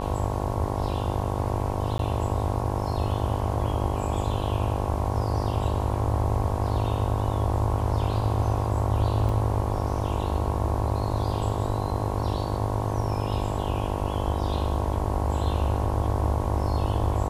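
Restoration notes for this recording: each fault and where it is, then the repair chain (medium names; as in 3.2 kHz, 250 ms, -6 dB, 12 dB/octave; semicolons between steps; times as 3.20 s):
buzz 50 Hz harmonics 22 -30 dBFS
1.98–1.99 s: dropout 12 ms
9.29 s: dropout 3.7 ms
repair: de-hum 50 Hz, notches 22; interpolate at 1.98 s, 12 ms; interpolate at 9.29 s, 3.7 ms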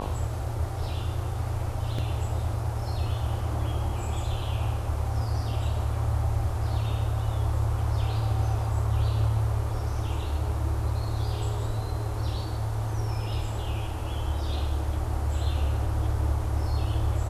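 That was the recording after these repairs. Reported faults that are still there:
nothing left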